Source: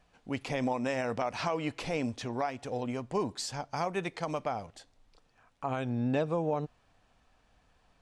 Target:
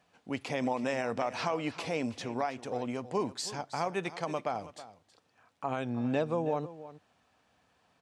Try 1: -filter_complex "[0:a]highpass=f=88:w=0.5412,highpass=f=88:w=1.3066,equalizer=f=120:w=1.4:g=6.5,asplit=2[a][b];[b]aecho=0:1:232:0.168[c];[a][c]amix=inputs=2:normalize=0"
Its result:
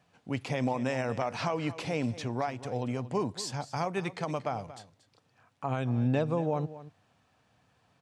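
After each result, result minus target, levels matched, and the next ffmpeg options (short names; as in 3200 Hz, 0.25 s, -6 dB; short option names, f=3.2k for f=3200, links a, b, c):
125 Hz band +7.0 dB; echo 90 ms early
-filter_complex "[0:a]highpass=f=88:w=0.5412,highpass=f=88:w=1.3066,equalizer=f=120:w=1.4:g=-4,asplit=2[a][b];[b]aecho=0:1:232:0.168[c];[a][c]amix=inputs=2:normalize=0"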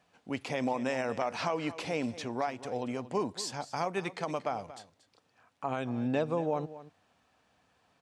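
echo 90 ms early
-filter_complex "[0:a]highpass=f=88:w=0.5412,highpass=f=88:w=1.3066,equalizer=f=120:w=1.4:g=-4,asplit=2[a][b];[b]aecho=0:1:322:0.168[c];[a][c]amix=inputs=2:normalize=0"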